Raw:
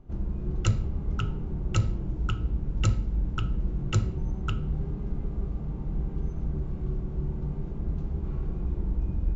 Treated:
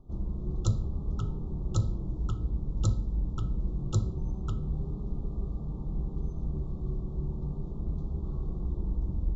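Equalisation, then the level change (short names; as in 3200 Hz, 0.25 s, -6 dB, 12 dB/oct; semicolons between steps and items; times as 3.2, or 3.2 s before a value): elliptic band-stop 1200–3500 Hz, stop band 50 dB; -2.5 dB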